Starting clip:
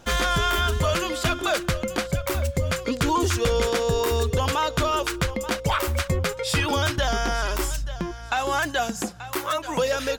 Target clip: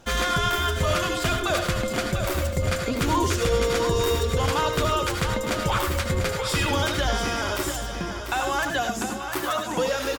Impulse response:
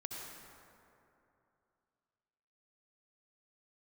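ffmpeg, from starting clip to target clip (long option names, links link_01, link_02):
-filter_complex "[0:a]aecho=1:1:693|1386|2079|2772:0.376|0.128|0.0434|0.0148[link_01];[1:a]atrim=start_sample=2205,atrim=end_sample=4410,asetrate=39249,aresample=44100[link_02];[link_01][link_02]afir=irnorm=-1:irlink=0,volume=2.5dB"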